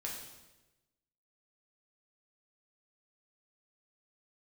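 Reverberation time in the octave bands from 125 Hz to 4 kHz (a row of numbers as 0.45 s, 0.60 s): 1.3 s, 1.2 s, 1.2 s, 1.0 s, 1.0 s, 0.95 s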